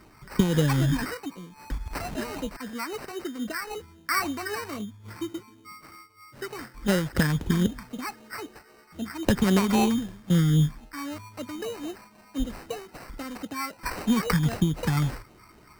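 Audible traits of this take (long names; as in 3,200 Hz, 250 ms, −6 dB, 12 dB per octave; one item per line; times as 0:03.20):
phaser sweep stages 4, 3.8 Hz, lowest notch 520–1,100 Hz
aliases and images of a low sample rate 3,400 Hz, jitter 0%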